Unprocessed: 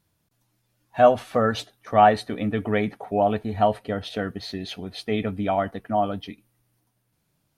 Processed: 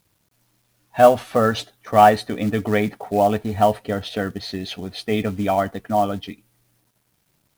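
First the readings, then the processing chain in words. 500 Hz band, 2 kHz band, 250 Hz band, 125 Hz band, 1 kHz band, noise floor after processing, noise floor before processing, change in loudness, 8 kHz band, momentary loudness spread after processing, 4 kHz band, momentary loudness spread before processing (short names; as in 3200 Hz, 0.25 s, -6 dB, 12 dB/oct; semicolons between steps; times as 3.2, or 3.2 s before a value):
+3.5 dB, +3.5 dB, +3.5 dB, +3.5 dB, +3.5 dB, -68 dBFS, -72 dBFS, +3.5 dB, n/a, 15 LU, +4.0 dB, 15 LU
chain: companded quantiser 6-bit; gain +3.5 dB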